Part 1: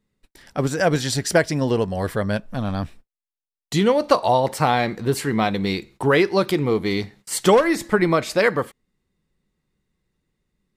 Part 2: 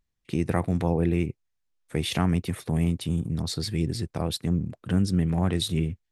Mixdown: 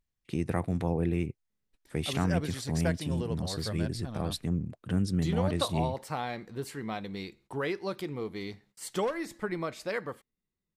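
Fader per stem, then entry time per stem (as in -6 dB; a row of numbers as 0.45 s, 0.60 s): -15.5 dB, -5.0 dB; 1.50 s, 0.00 s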